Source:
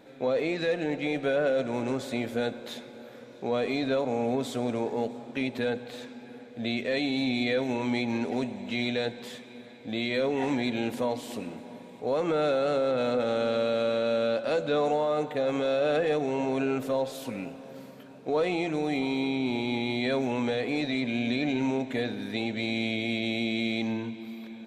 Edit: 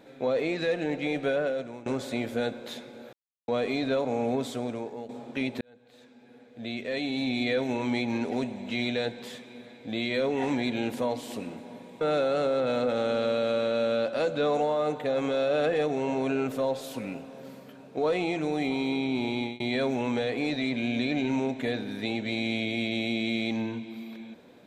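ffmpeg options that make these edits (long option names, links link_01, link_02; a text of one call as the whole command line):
ffmpeg -i in.wav -filter_complex "[0:a]asplit=8[link_01][link_02][link_03][link_04][link_05][link_06][link_07][link_08];[link_01]atrim=end=1.86,asetpts=PTS-STARTPTS,afade=type=out:start_time=1.28:duration=0.58:silence=0.11885[link_09];[link_02]atrim=start=1.86:end=3.13,asetpts=PTS-STARTPTS,afade=type=in:duration=0.004:curve=hsin:silence=0.11885,afade=type=out:start_time=1.266:duration=0.004:curve=hsin[link_10];[link_03]atrim=start=3.13:end=3.48,asetpts=PTS-STARTPTS,volume=0[link_11];[link_04]atrim=start=3.48:end=5.09,asetpts=PTS-STARTPTS,afade=type=in:duration=0.004:curve=hsin,afade=type=out:start_time=0.91:duration=0.7:silence=0.237137[link_12];[link_05]atrim=start=5.09:end=5.61,asetpts=PTS-STARTPTS,afade=type=in:duration=0.004:curve=hsin:silence=0.237137,afade=type=out:start_time=0.516:duration=0.004:curve=hsin[link_13];[link_06]atrim=start=5.61:end=12.012,asetpts=PTS-STARTPTS,afade=type=in:duration=1.91[link_14];[link_07]atrim=start=12.318:end=19.91,asetpts=PTS-STARTPTS,afade=type=out:start_time=7.322:duration=0.27:curve=qsin[link_15];[link_08]atrim=start=19.91,asetpts=PTS-STARTPTS,afade=type=in:duration=0.004:curve=hsin[link_16];[link_09][link_10][link_11][link_12][link_13][link_14]concat=n=6:v=0:a=1[link_17];[link_15][link_16]concat=n=2:v=0:a=1[link_18];[link_17][link_18]acrossfade=duration=0.004:curve1=hsin:curve2=hsin" out.wav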